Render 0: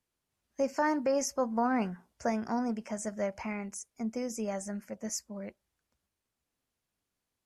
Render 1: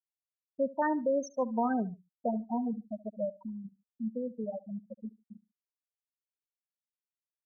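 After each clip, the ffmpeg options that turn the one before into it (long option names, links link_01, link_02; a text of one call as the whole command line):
ffmpeg -i in.wav -af "afftfilt=real='re*gte(hypot(re,im),0.112)':imag='im*gte(hypot(re,im),0.112)':win_size=1024:overlap=0.75,aecho=1:1:72|144:0.106|0.0254" out.wav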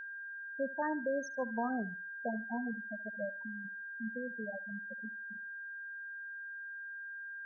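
ffmpeg -i in.wav -af "aeval=exprs='val(0)+0.0158*sin(2*PI*1600*n/s)':channel_layout=same,volume=-6dB" out.wav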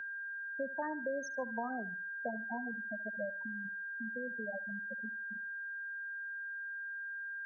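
ffmpeg -i in.wav -filter_complex "[0:a]acrossover=split=190|500[link_01][link_02][link_03];[link_01]acompressor=threshold=-57dB:ratio=4[link_04];[link_02]acompressor=threshold=-49dB:ratio=4[link_05];[link_03]acompressor=threshold=-39dB:ratio=4[link_06];[link_04][link_05][link_06]amix=inputs=3:normalize=0,volume=2.5dB" out.wav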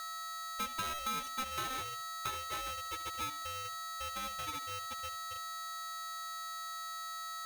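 ffmpeg -i in.wav -af "aeval=exprs='abs(val(0))':channel_layout=same,aeval=exprs='val(0)*sgn(sin(2*PI*1300*n/s))':channel_layout=same" out.wav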